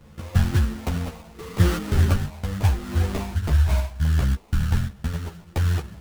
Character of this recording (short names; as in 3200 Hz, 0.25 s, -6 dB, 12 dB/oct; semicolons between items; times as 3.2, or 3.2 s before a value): phasing stages 8, 0.72 Hz, lowest notch 340–1500 Hz; aliases and images of a low sample rate 1600 Hz, jitter 20%; a shimmering, thickened sound